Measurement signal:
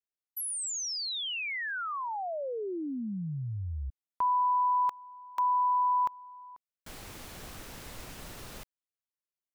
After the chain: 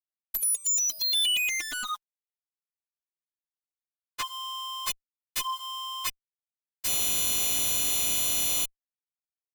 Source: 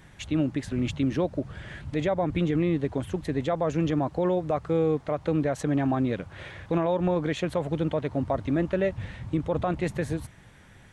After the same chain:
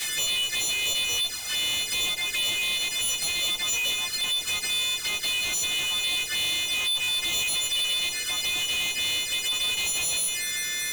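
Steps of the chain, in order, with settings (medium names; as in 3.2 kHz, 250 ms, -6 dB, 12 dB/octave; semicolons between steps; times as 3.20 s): partials quantised in pitch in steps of 3 st; inverse Chebyshev high-pass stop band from 400 Hz, stop band 80 dB; in parallel at +2 dB: peak limiter -29 dBFS; on the sum: fuzz box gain 47 dB, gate -52 dBFS; touch-sensitive flanger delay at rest 9.6 ms, full sweep at -14.5 dBFS; saturation -20 dBFS; trim -3.5 dB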